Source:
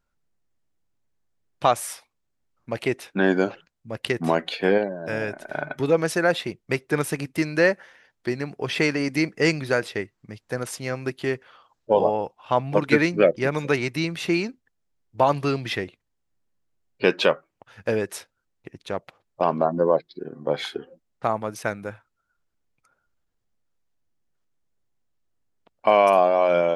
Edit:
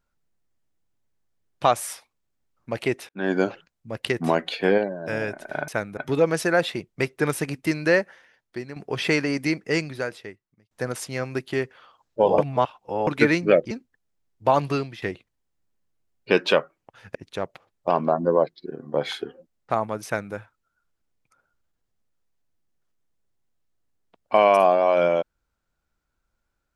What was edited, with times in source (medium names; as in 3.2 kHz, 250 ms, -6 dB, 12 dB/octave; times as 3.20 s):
3.09–3.41 s: fade in
7.55–8.47 s: fade out, to -9.5 dB
8.99–10.42 s: fade out
12.09–12.78 s: reverse
13.42–14.44 s: delete
15.44–15.75 s: fade out, to -19 dB
17.88–18.68 s: delete
21.58–21.87 s: copy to 5.68 s